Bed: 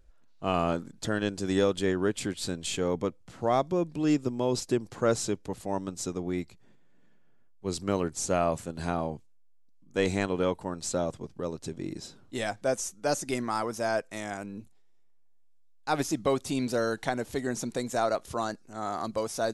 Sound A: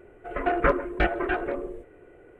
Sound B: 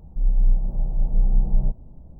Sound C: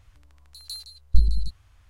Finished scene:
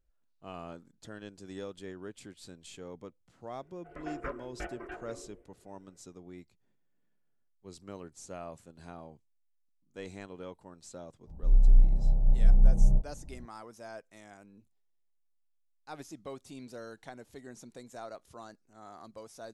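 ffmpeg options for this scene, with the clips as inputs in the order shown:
-filter_complex "[0:a]volume=-16.5dB[a];[2:a]asplit=2[b][c];[c]adelay=31,volume=-4dB[d];[b][d]amix=inputs=2:normalize=0[e];[1:a]atrim=end=2.39,asetpts=PTS-STARTPTS,volume=-17dB,afade=t=in:d=0.004:c=hsin,afade=t=out:st=2.386:d=0.004:c=hsin,adelay=3600[f];[e]atrim=end=2.19,asetpts=PTS-STARTPTS,volume=-5.5dB,afade=t=in:d=0.004:c=hsin,afade=t=out:st=2.186:d=0.004:c=hsin,adelay=11270[g];[a][f][g]amix=inputs=3:normalize=0"

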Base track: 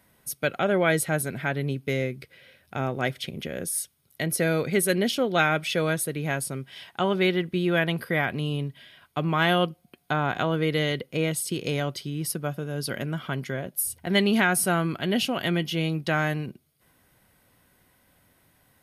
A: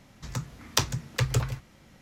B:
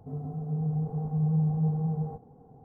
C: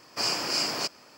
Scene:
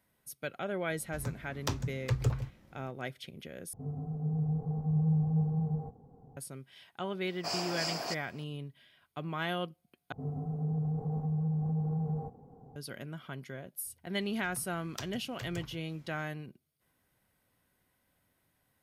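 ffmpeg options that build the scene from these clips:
-filter_complex "[1:a]asplit=2[a][b];[2:a]asplit=2[c][d];[0:a]volume=-12.5dB[e];[a]tiltshelf=f=1.1k:g=5.5[f];[c]lowshelf=f=150:g=5.5[g];[3:a]equalizer=f=700:w=3.3:g=11[h];[d]acompressor=threshold=-28dB:ratio=6:attack=3.2:release=140:knee=1:detection=peak[i];[b]acompressor=mode=upward:threshold=-34dB:ratio=2.5:attack=3.2:release=140:knee=2.83:detection=peak[j];[e]asplit=3[k][l][m];[k]atrim=end=3.734[n];[g]atrim=end=2.64,asetpts=PTS-STARTPTS,volume=-5dB[o];[l]atrim=start=6.366:end=10.124[p];[i]atrim=end=2.64,asetpts=PTS-STARTPTS,volume=-1dB[q];[m]atrim=start=12.756[r];[f]atrim=end=2.01,asetpts=PTS-STARTPTS,volume=-8.5dB,afade=t=in:d=0.004:c=hsin,afade=t=out:st=2.006:d=0.004:c=hsin,adelay=900[s];[h]atrim=end=1.17,asetpts=PTS-STARTPTS,volume=-9dB,afade=t=in:d=0.004:c=hsin,afade=t=out:st=1.166:d=0.004:c=hsin,adelay=7270[t];[j]atrim=end=2.01,asetpts=PTS-STARTPTS,volume=-18dB,afade=t=in:d=0.004:c=hsin,afade=t=out:st=2.006:d=0.004:c=hsin,adelay=14210[u];[n][o]acrossfade=d=0.004:c1=hsin:c2=hsin[v];[v][p]acrossfade=d=0.004:c1=hsin:c2=hsin[w];[w][q]acrossfade=d=0.004:c1=hsin:c2=hsin[x];[x][r]acrossfade=d=0.004:c1=hsin:c2=hsin[y];[y][s][t][u]amix=inputs=4:normalize=0"

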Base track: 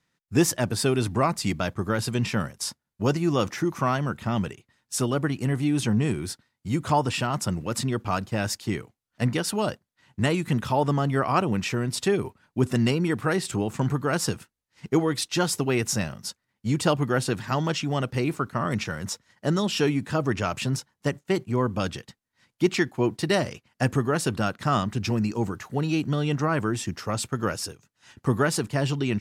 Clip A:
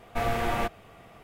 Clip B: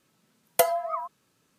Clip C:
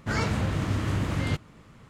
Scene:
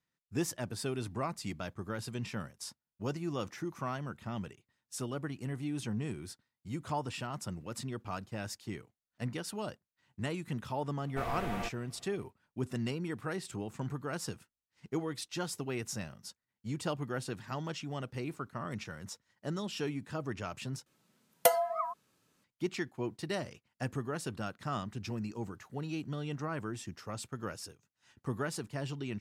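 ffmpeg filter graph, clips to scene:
-filter_complex "[0:a]volume=-13dB,asplit=2[a][b];[a]atrim=end=20.864[c];[2:a]atrim=end=1.58,asetpts=PTS-STARTPTS,volume=-3.5dB[d];[b]atrim=start=22.436[e];[1:a]atrim=end=1.23,asetpts=PTS-STARTPTS,volume=-10.5dB,afade=t=in:d=0.004:c=hsin,afade=t=out:st=1.226:d=0.004:c=hsin,adelay=11010[f];[c][d]acrossfade=d=0.004:c1=hsin:c2=hsin[g];[g][e]acrossfade=d=0.004:c1=hsin:c2=hsin[h];[h][f]amix=inputs=2:normalize=0"

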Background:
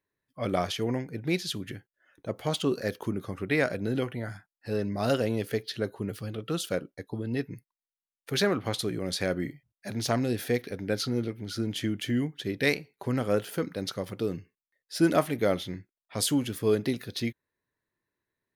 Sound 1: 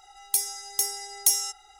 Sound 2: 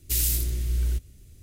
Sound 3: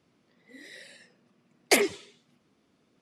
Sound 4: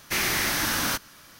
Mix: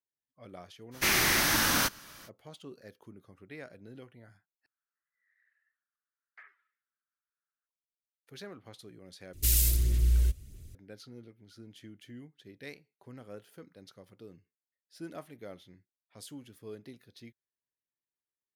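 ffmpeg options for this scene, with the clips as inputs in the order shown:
-filter_complex "[0:a]volume=-20dB[a];[3:a]asuperpass=centerf=1500:order=4:qfactor=3.3[b];[2:a]aphaser=in_gain=1:out_gain=1:delay=1.9:decay=0.31:speed=1.6:type=sinusoidal[c];[a]asplit=3[d][e][f];[d]atrim=end=4.664[g];[b]atrim=end=3.01,asetpts=PTS-STARTPTS,volume=-16dB[h];[e]atrim=start=7.666:end=9.334[i];[c]atrim=end=1.42,asetpts=PTS-STARTPTS,volume=-2dB[j];[f]atrim=start=10.746[k];[4:a]atrim=end=1.39,asetpts=PTS-STARTPTS,volume=-0.5dB,afade=t=in:d=0.05,afade=t=out:st=1.34:d=0.05,adelay=910[l];[g][h]acrossfade=d=0.004:c1=hsin:c2=hsin[m];[m][i]acrossfade=d=0.004:c1=hsin:c2=hsin[n];[n][j]acrossfade=d=0.004:c1=hsin:c2=hsin[o];[o][k]acrossfade=d=0.004:c1=hsin:c2=hsin[p];[p][l]amix=inputs=2:normalize=0"

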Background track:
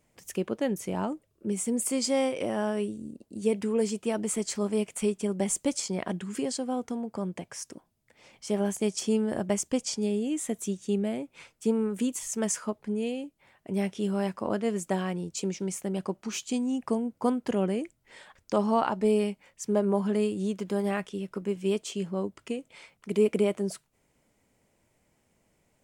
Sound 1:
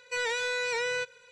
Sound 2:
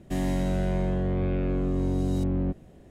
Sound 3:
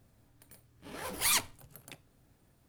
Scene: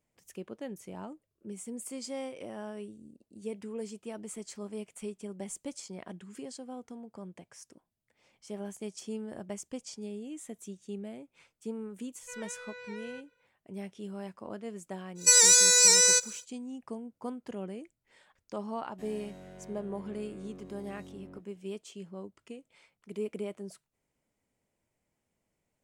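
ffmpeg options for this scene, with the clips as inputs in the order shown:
-filter_complex "[1:a]asplit=2[a][b];[0:a]volume=-12dB[c];[a]aemphasis=mode=reproduction:type=75fm[d];[b]aexciter=amount=9.5:drive=10:freq=4.9k[e];[2:a]highpass=f=320:p=1[f];[d]atrim=end=1.31,asetpts=PTS-STARTPTS,volume=-14.5dB,afade=t=in:d=0.004:c=hsin,afade=t=out:st=1.306:d=0.004:c=hsin,adelay=12160[g];[e]atrim=end=1.31,asetpts=PTS-STARTPTS,afade=t=in:d=0.1,afade=t=out:st=1.21:d=0.1,adelay=15150[h];[f]atrim=end=2.9,asetpts=PTS-STARTPTS,volume=-17dB,afade=t=in:d=0.004:c=hsin,afade=t=out:st=2.896:d=0.004:c=hsin,adelay=18880[i];[c][g][h][i]amix=inputs=4:normalize=0"

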